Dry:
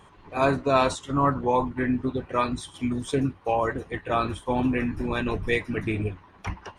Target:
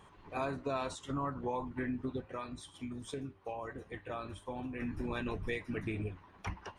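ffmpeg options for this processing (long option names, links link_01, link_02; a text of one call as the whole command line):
ffmpeg -i in.wav -filter_complex "[0:a]acompressor=threshold=-28dB:ratio=4,asplit=3[link_01][link_02][link_03];[link_01]afade=type=out:start_time=2.2:duration=0.02[link_04];[link_02]flanger=delay=9.3:depth=1.2:regen=87:speed=1.3:shape=triangular,afade=type=in:start_time=2.2:duration=0.02,afade=type=out:start_time=4.79:duration=0.02[link_05];[link_03]afade=type=in:start_time=4.79:duration=0.02[link_06];[link_04][link_05][link_06]amix=inputs=3:normalize=0,volume=-6dB" out.wav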